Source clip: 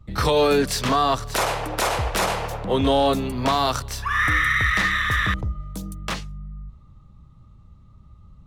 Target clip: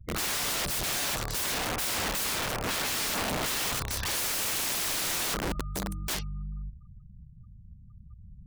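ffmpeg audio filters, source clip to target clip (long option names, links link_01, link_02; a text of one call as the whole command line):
ffmpeg -i in.wav -af "afftfilt=real='re*gte(hypot(re,im),0.00794)':imag='im*gte(hypot(re,im),0.00794)':win_size=1024:overlap=0.75,aeval=exprs='(mod(16.8*val(0)+1,2)-1)/16.8':channel_layout=same,volume=-1dB" out.wav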